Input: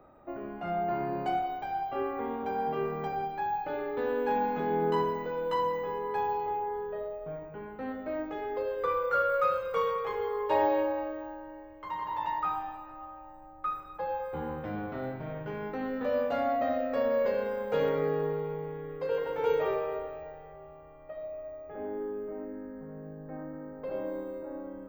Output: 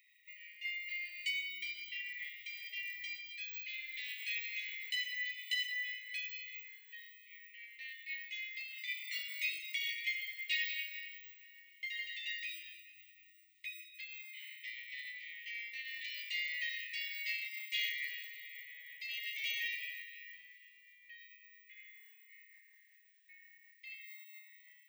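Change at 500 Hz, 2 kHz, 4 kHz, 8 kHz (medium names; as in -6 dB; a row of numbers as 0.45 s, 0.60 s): under -40 dB, +4.0 dB, +11.0 dB, no reading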